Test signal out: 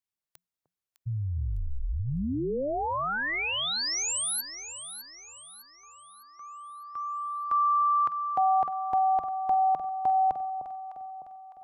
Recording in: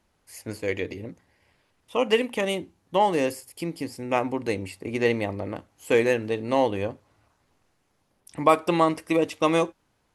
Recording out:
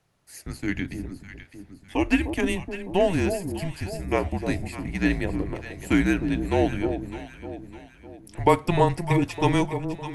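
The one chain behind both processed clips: echo with dull and thin repeats by turns 0.303 s, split 1000 Hz, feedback 65%, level -7.5 dB; frequency shift -180 Hz

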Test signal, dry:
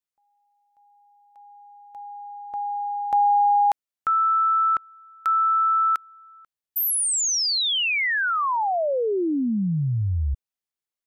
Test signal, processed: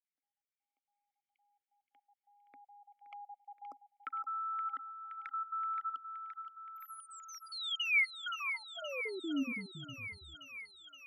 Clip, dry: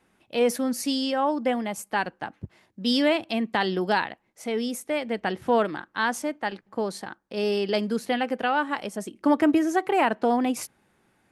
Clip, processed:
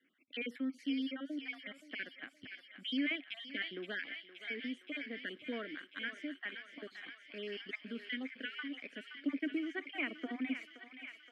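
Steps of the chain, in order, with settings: random spectral dropouts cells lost 37%; vowel filter i; three-band isolator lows -18 dB, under 570 Hz, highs -20 dB, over 2300 Hz; in parallel at +1.5 dB: compressor, threshold -57 dBFS; on the sum: high shelf 5300 Hz +6.5 dB; on a send: thinning echo 0.522 s, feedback 82%, high-pass 990 Hz, level -8 dB; on the sum: gain +6 dB

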